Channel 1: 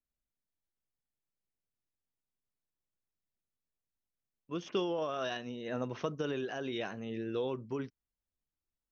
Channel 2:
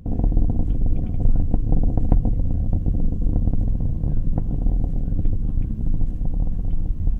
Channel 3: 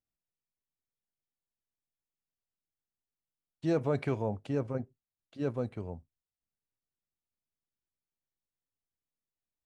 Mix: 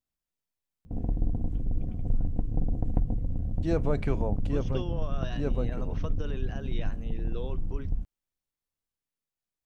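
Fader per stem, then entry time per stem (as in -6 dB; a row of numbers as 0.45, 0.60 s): -4.5, -9.0, +0.5 dB; 0.00, 0.85, 0.00 s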